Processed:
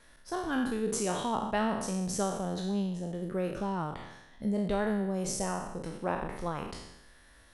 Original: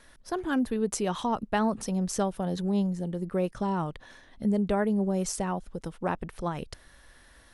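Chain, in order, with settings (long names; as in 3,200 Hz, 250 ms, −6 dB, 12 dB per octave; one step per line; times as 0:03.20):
peak hold with a decay on every bin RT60 0.90 s
level −5 dB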